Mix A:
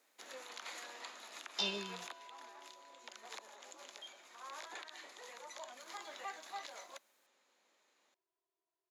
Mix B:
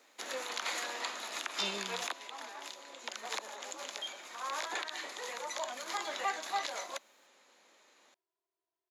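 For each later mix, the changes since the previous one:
first sound +11.0 dB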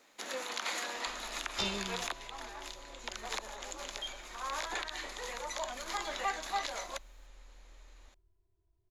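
second sound: remove HPF 630 Hz 12 dB/oct; master: remove HPF 260 Hz 12 dB/oct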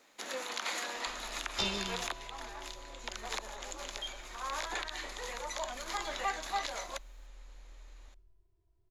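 second sound: send +10.0 dB

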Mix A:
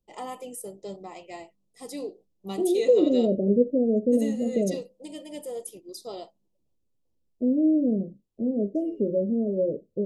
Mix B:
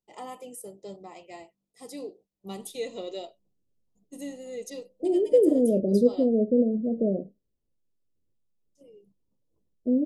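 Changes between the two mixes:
first voice -3.5 dB; second voice: entry +2.45 s

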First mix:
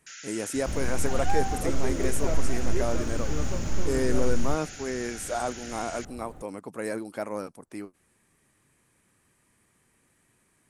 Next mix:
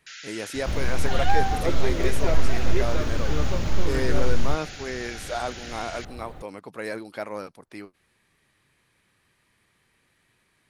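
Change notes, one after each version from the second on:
second sound +5.0 dB; master: add ten-band EQ 250 Hz -4 dB, 2000 Hz +3 dB, 4000 Hz +9 dB, 8000 Hz -9 dB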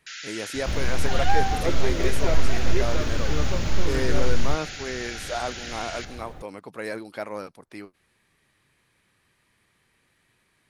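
reverb: on, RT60 1.1 s

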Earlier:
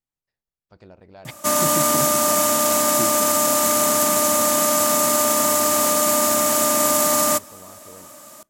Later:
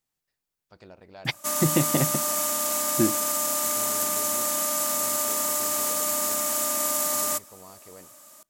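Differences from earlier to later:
second voice +9.0 dB; background -10.5 dB; master: add tilt +1.5 dB/oct

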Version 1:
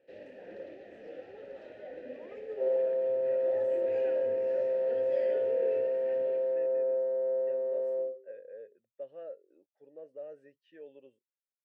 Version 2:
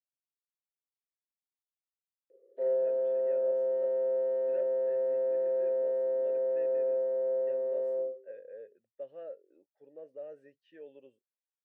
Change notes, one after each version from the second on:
first sound: muted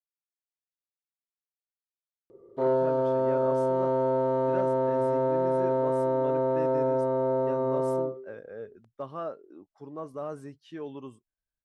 background: remove HPF 340 Hz 12 dB/oct; master: remove vowel filter e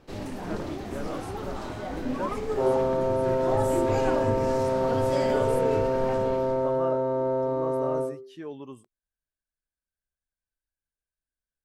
speech: entry -2.35 s; first sound: unmuted; master: remove air absorption 56 m

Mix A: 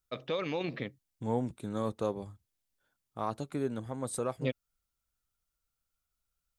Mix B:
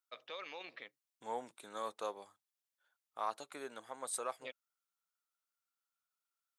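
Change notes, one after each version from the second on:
first voice -7.0 dB; master: add HPF 820 Hz 12 dB/oct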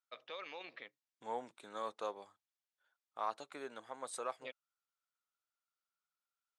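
master: add air absorption 62 m

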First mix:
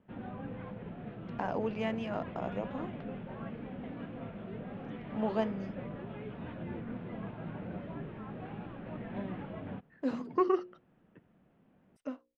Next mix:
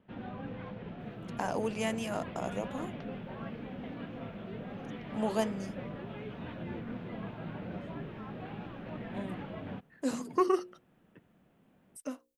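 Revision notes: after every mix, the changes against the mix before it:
master: remove air absorption 290 m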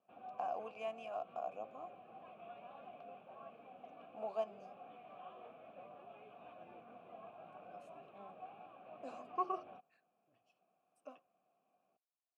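first voice: entry -1.00 s; second voice: remove LPF 1300 Hz; master: add vowel filter a

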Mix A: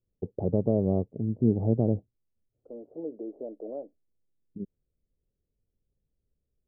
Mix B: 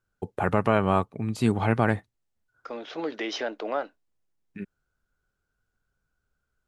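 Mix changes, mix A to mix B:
second voice +4.0 dB; master: remove steep low-pass 570 Hz 36 dB/oct

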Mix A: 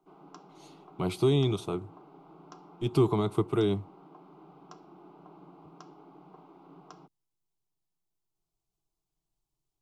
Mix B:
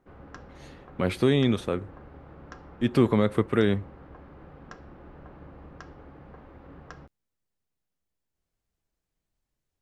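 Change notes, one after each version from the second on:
background: remove steep high-pass 160 Hz 72 dB/oct; master: remove fixed phaser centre 350 Hz, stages 8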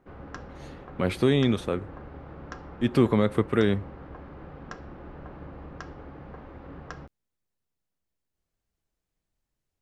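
background +4.5 dB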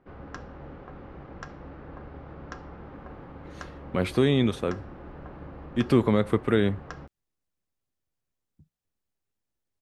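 speech: entry +2.95 s

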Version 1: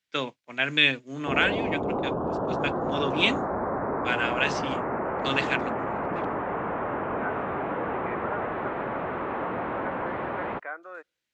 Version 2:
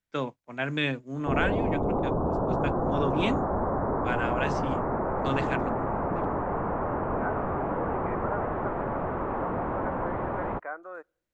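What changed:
second voice: send +10.0 dB; master: remove weighting filter D

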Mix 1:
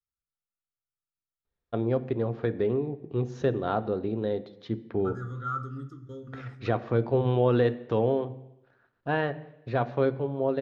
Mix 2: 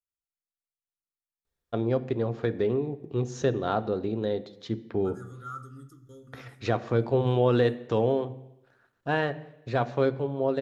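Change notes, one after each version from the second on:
second voice -8.0 dB; master: remove air absorption 190 m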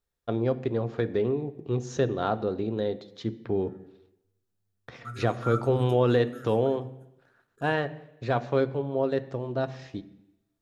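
first voice: entry -1.45 s; second voice +5.5 dB

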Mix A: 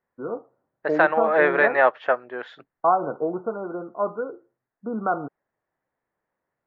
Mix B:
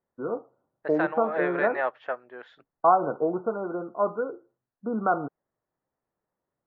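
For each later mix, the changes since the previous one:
second voice -10.0 dB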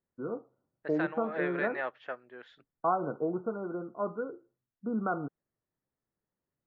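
master: add bell 800 Hz -10 dB 2.1 oct

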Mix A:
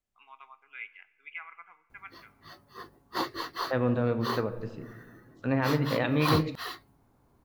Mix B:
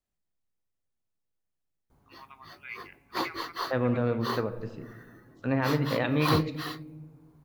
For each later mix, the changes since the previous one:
first voice: entry +1.90 s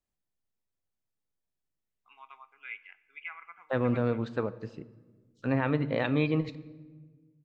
second voice: send -6.5 dB; background: muted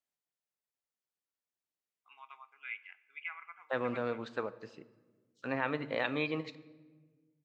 master: add HPF 750 Hz 6 dB/oct

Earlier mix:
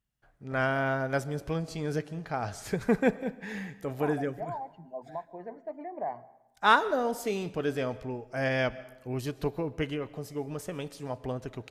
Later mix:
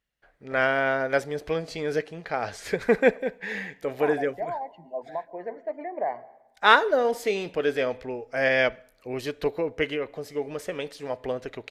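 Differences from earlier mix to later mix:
first voice: send off; master: add ten-band EQ 125 Hz -6 dB, 500 Hz +9 dB, 2000 Hz +10 dB, 4000 Hz +6 dB

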